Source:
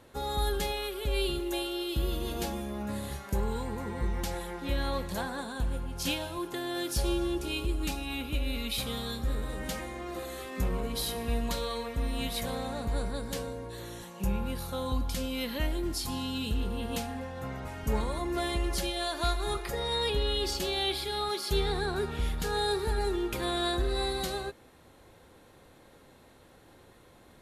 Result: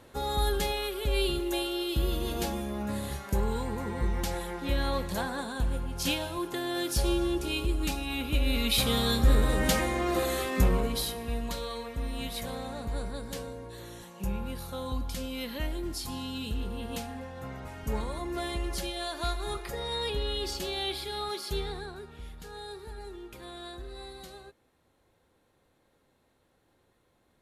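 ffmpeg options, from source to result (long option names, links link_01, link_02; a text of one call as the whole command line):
ffmpeg -i in.wav -af "volume=10dB,afade=type=in:start_time=8.14:duration=1.17:silence=0.398107,afade=type=out:start_time=10.31:duration=0.85:silence=0.237137,afade=type=out:start_time=21.38:duration=0.64:silence=0.298538" out.wav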